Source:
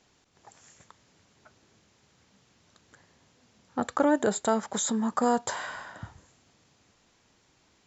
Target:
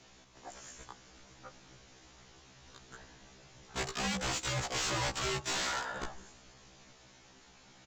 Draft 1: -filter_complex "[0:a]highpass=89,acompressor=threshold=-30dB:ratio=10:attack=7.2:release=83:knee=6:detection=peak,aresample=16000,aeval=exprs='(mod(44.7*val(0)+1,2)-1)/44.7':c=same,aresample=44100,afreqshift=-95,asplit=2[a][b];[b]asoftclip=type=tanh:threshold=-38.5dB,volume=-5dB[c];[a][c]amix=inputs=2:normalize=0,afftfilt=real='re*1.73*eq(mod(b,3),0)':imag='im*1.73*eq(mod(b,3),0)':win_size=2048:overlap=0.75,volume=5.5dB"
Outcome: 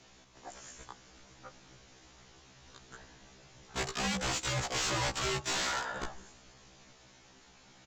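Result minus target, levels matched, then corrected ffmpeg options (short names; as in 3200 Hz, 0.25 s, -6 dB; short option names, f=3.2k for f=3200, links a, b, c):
soft clip: distortion -6 dB
-filter_complex "[0:a]highpass=89,acompressor=threshold=-30dB:ratio=10:attack=7.2:release=83:knee=6:detection=peak,aresample=16000,aeval=exprs='(mod(44.7*val(0)+1,2)-1)/44.7':c=same,aresample=44100,afreqshift=-95,asplit=2[a][b];[b]asoftclip=type=tanh:threshold=-47.5dB,volume=-5dB[c];[a][c]amix=inputs=2:normalize=0,afftfilt=real='re*1.73*eq(mod(b,3),0)':imag='im*1.73*eq(mod(b,3),0)':win_size=2048:overlap=0.75,volume=5.5dB"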